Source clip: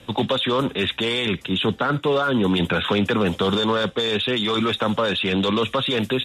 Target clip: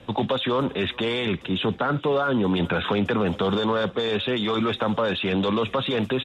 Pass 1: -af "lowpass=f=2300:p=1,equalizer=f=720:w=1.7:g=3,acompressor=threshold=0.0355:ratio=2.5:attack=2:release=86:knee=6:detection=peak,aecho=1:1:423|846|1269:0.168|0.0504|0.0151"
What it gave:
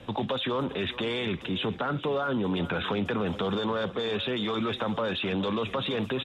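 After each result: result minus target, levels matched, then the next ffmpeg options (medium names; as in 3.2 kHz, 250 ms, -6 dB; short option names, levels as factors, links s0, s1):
compression: peak gain reduction +6.5 dB; echo-to-direct +8 dB
-af "lowpass=f=2300:p=1,equalizer=f=720:w=1.7:g=3,acompressor=threshold=0.119:ratio=2.5:attack=2:release=86:knee=6:detection=peak,aecho=1:1:423|846|1269:0.168|0.0504|0.0151"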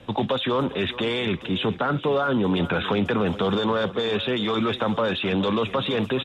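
echo-to-direct +8 dB
-af "lowpass=f=2300:p=1,equalizer=f=720:w=1.7:g=3,acompressor=threshold=0.119:ratio=2.5:attack=2:release=86:knee=6:detection=peak,aecho=1:1:423|846:0.0668|0.0201"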